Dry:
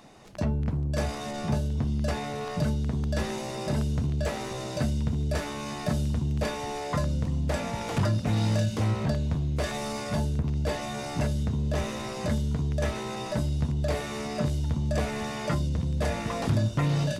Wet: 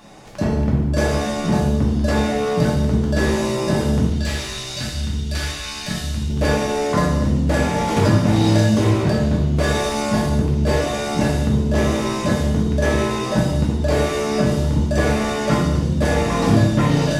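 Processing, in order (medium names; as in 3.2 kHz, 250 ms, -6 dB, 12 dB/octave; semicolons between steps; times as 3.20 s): 4.06–6.30 s: ten-band graphic EQ 125 Hz -7 dB, 250 Hz -7 dB, 500 Hz -12 dB, 1 kHz -7 dB, 4 kHz +5 dB; gated-style reverb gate 330 ms falling, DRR -4 dB; dynamic bell 300 Hz, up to +6 dB, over -40 dBFS, Q 1.2; trim +4.5 dB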